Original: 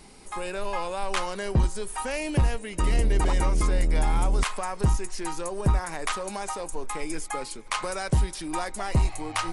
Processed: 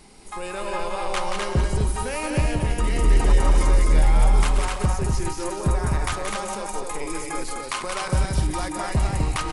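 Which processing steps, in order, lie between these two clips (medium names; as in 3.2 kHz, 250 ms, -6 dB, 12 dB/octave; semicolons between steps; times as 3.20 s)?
backward echo that repeats 105 ms, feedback 42%, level -9 dB; loudspeakers at several distances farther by 61 m -6 dB, 87 m -3 dB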